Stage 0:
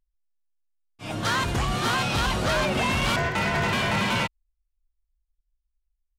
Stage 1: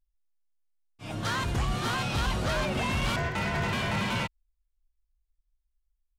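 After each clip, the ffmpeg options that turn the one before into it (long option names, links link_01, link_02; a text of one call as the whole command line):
ffmpeg -i in.wav -af "lowshelf=frequency=140:gain=6.5,volume=-6dB" out.wav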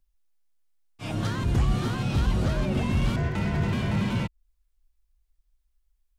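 ffmpeg -i in.wav -filter_complex "[0:a]acrossover=split=400[link_01][link_02];[link_02]acompressor=threshold=-42dB:ratio=6[link_03];[link_01][link_03]amix=inputs=2:normalize=0,volume=6.5dB" out.wav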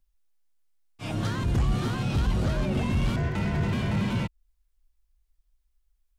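ffmpeg -i in.wav -af "asoftclip=type=tanh:threshold=-15dB" out.wav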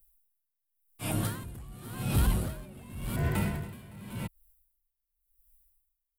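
ffmpeg -i in.wav -filter_complex "[0:a]acrossover=split=250|1600[link_01][link_02][link_03];[link_03]aexciter=amount=5.9:drive=9.1:freq=8700[link_04];[link_01][link_02][link_04]amix=inputs=3:normalize=0,aeval=exprs='val(0)*pow(10,-22*(0.5-0.5*cos(2*PI*0.9*n/s))/20)':channel_layout=same" out.wav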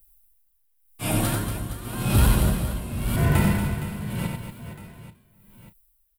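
ffmpeg -i in.wav -filter_complex "[0:a]asplit=2[link_01][link_02];[link_02]adelay=34,volume=-12.5dB[link_03];[link_01][link_03]amix=inputs=2:normalize=0,aecho=1:1:90|234|464.4|833|1423:0.631|0.398|0.251|0.158|0.1,volume=7dB" out.wav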